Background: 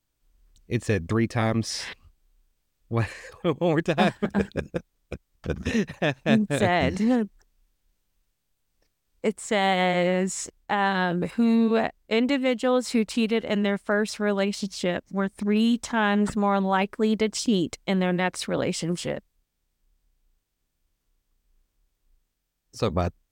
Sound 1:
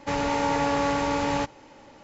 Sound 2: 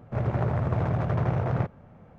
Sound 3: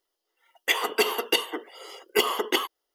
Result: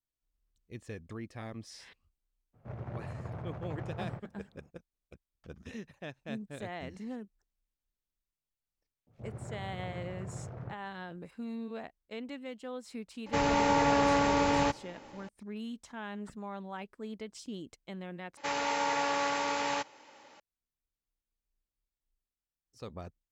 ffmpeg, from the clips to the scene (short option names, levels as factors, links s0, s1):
-filter_complex "[2:a]asplit=2[s0][s1];[1:a]asplit=2[s2][s3];[0:a]volume=0.112[s4];[s1]acrossover=split=870|3000[s5][s6][s7];[s5]adelay=60[s8];[s6]adelay=100[s9];[s8][s9][s7]amix=inputs=3:normalize=0[s10];[s3]highpass=f=1000:p=1[s11];[s4]asplit=2[s12][s13];[s12]atrim=end=18.374[s14];[s11]atrim=end=2.03,asetpts=PTS-STARTPTS,volume=0.841[s15];[s13]atrim=start=20.396[s16];[s0]atrim=end=2.18,asetpts=PTS-STARTPTS,volume=0.178,afade=t=in:d=0.02,afade=t=out:st=2.16:d=0.02,adelay=2530[s17];[s10]atrim=end=2.18,asetpts=PTS-STARTPTS,volume=0.15,afade=t=in:d=0.004:c=hsin,afade=t=out:st=2.176:d=0.004:c=hsin,adelay=9010[s18];[s2]atrim=end=2.03,asetpts=PTS-STARTPTS,volume=0.841,afade=t=in:d=0.004:c=hsin,afade=t=out:st=2.026:d=0.004:c=hsin,adelay=13260[s19];[s14][s15]acrossfade=d=0.004:c1=hsin:c2=hsin[s20];[s20][s16]acrossfade=d=0.004:c1=hsin:c2=hsin[s21];[s21][s17][s18][s19]amix=inputs=4:normalize=0"